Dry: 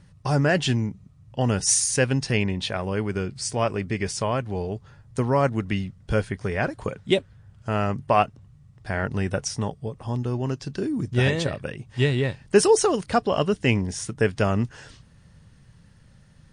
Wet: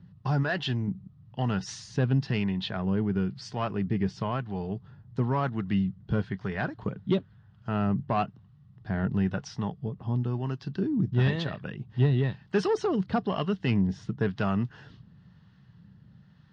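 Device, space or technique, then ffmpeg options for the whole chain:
guitar amplifier with harmonic tremolo: -filter_complex "[0:a]acrossover=split=610[a][b];[a]aeval=exprs='val(0)*(1-0.5/2+0.5/2*cos(2*PI*1*n/s))':c=same[c];[b]aeval=exprs='val(0)*(1-0.5/2-0.5/2*cos(2*PI*1*n/s))':c=same[d];[c][d]amix=inputs=2:normalize=0,asoftclip=type=tanh:threshold=-15.5dB,highpass=77,equalizer=f=130:t=q:w=4:g=4,equalizer=f=190:t=q:w=4:g=8,equalizer=f=540:t=q:w=4:g=-8,equalizer=f=2.3k:t=q:w=4:g=-8,lowpass=f=4.1k:w=0.5412,lowpass=f=4.1k:w=1.3066,asettb=1/sr,asplit=3[e][f][g];[e]atrim=end=0.434[h];[f]atrim=start=0.43:end=0.88,asetpts=PTS-STARTPTS,afade=t=in:d=0.004:c=qsin,afade=t=out:st=0.446:d=0.004:c=qsin,equalizer=f=180:t=o:w=0.9:g=-8.5[i];[g]atrim=start=0.876[j];[h][i]acrossfade=d=0.004:c1=hsin:c2=qsin[k];[k][j]acrossfade=d=0.004:c1=qsin:c2=hsin,volume=-1.5dB"

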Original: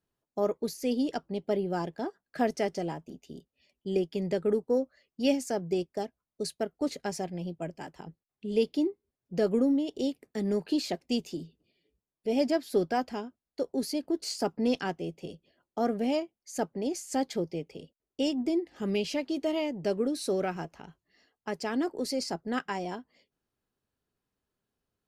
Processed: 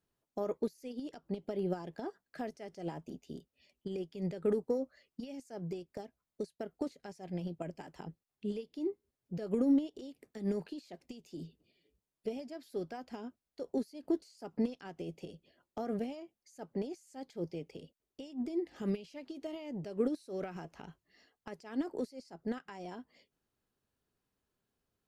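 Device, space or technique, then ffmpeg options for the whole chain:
de-esser from a sidechain: -filter_complex "[0:a]asplit=2[a][b];[b]highpass=4.3k,apad=whole_len=1105993[c];[a][c]sidechaincompress=threshold=-60dB:ratio=10:attack=2.3:release=85"

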